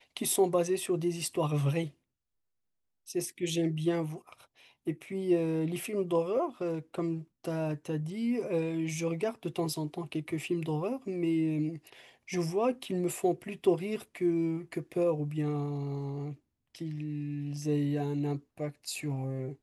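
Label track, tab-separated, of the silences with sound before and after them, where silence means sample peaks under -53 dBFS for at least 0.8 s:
1.910000	3.070000	silence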